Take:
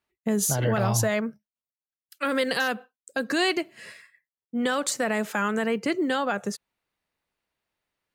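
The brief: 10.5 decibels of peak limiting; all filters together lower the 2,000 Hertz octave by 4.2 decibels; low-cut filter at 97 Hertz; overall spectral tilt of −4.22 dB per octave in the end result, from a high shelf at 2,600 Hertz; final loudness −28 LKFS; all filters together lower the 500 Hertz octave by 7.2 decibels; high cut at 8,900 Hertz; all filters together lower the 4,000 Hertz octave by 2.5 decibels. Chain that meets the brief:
high-pass filter 97 Hz
low-pass filter 8,900 Hz
parametric band 500 Hz −9 dB
parametric band 2,000 Hz −5.5 dB
high-shelf EQ 2,600 Hz +3.5 dB
parametric band 4,000 Hz −4 dB
level +5 dB
brickwall limiter −18 dBFS

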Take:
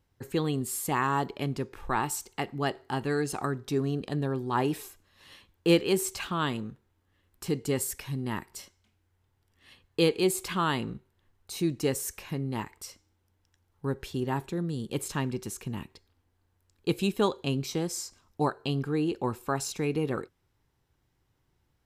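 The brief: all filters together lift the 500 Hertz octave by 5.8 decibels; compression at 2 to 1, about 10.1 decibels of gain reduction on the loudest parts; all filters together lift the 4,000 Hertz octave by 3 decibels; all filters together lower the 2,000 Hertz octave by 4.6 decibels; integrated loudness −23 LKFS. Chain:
parametric band 500 Hz +7.5 dB
parametric band 2,000 Hz −9 dB
parametric band 4,000 Hz +7 dB
downward compressor 2 to 1, threshold −32 dBFS
level +11 dB

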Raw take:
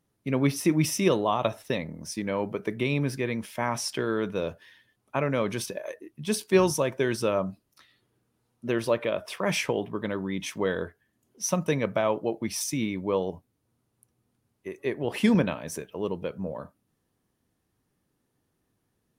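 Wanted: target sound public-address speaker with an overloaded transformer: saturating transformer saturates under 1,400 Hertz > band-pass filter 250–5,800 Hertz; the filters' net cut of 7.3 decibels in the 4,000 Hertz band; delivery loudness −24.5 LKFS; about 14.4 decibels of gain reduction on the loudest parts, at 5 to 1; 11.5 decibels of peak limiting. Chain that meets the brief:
parametric band 4,000 Hz −9 dB
downward compressor 5 to 1, threshold −34 dBFS
brickwall limiter −31 dBFS
saturating transformer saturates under 1,400 Hz
band-pass filter 250–5,800 Hz
level +23 dB

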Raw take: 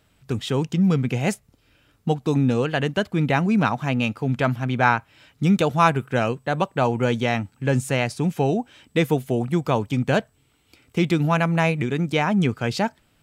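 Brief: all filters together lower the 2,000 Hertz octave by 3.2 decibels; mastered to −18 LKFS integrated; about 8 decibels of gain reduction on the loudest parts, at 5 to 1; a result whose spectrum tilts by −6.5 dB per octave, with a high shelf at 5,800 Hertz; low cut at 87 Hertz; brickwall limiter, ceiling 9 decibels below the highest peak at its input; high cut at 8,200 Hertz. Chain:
high-pass filter 87 Hz
low-pass filter 8,200 Hz
parametric band 2,000 Hz −3.5 dB
high-shelf EQ 5,800 Hz −7 dB
downward compressor 5 to 1, threshold −24 dBFS
level +14.5 dB
brickwall limiter −7.5 dBFS

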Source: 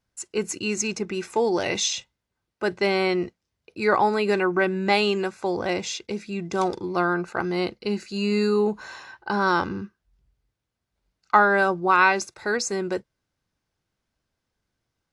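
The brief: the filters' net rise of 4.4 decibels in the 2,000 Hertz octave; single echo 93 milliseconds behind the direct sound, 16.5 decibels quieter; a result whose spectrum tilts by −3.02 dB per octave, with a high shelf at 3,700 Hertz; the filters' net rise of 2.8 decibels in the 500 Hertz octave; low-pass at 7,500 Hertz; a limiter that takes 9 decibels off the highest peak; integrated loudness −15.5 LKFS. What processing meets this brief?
low-pass filter 7,500 Hz
parametric band 500 Hz +3.5 dB
parametric band 2,000 Hz +7.5 dB
high-shelf EQ 3,700 Hz −5.5 dB
brickwall limiter −10 dBFS
single-tap delay 93 ms −16.5 dB
level +7.5 dB

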